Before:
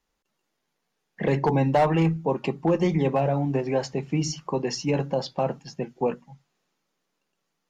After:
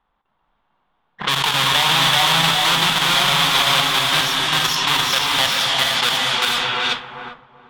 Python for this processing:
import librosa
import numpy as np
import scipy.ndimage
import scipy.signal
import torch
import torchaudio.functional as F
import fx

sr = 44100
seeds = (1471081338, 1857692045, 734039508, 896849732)

p1 = fx.halfwave_hold(x, sr)
p2 = fx.low_shelf_res(p1, sr, hz=680.0, db=-13.5, q=1.5)
p3 = p2 + fx.echo_feedback(p2, sr, ms=386, feedback_pct=29, wet_db=-3, dry=0)
p4 = fx.level_steps(p3, sr, step_db=13)
p5 = fx.rev_gated(p4, sr, seeds[0], gate_ms=500, shape='rising', drr_db=0.0)
p6 = fx.env_lowpass(p5, sr, base_hz=820.0, full_db=-25.0)
p7 = fx.over_compress(p6, sr, threshold_db=-37.0, ratio=-1.0)
p8 = p6 + F.gain(torch.from_numpy(p7), -0.5).numpy()
p9 = fx.peak_eq(p8, sr, hz=3400.0, db=14.5, octaves=0.57)
y = F.gain(torch.from_numpy(p9), 3.0).numpy()